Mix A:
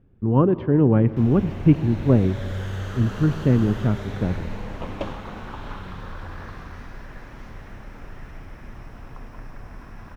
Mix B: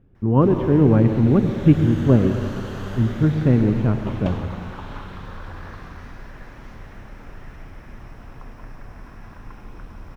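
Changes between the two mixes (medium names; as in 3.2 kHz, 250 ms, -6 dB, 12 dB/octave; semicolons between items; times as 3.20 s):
speech: send +11.0 dB; background: entry -0.75 s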